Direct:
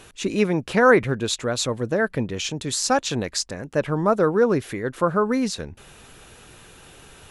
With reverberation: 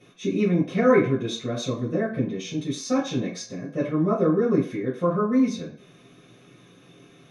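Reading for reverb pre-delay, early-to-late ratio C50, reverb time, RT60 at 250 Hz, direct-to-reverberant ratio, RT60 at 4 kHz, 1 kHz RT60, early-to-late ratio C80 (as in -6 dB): 3 ms, 6.5 dB, 0.45 s, 0.35 s, -10.5 dB, 0.50 s, 0.50 s, 12.0 dB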